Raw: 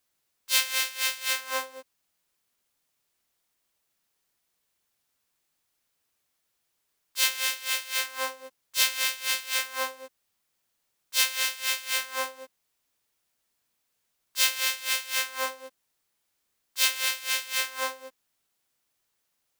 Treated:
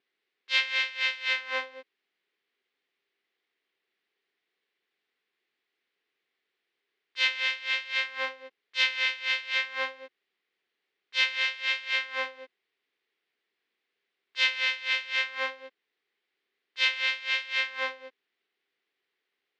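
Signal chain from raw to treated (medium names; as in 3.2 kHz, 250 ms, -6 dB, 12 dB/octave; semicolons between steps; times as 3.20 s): vibrato 0.53 Hz 11 cents; cabinet simulation 330–3700 Hz, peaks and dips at 400 Hz +9 dB, 610 Hz -9 dB, 930 Hz -8 dB, 1.3 kHz -4 dB, 2 kHz +5 dB; trim +1.5 dB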